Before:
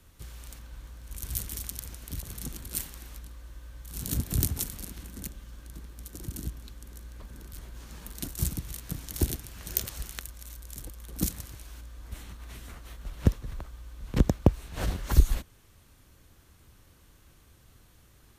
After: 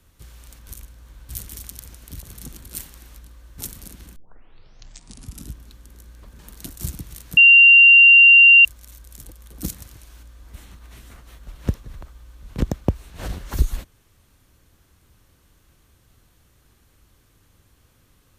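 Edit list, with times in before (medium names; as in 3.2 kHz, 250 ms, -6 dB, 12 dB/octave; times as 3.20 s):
0.67–1.29 s: reverse
3.58–4.55 s: delete
5.13 s: tape start 1.41 s
7.36–7.97 s: delete
8.95–10.23 s: bleep 2.77 kHz -6 dBFS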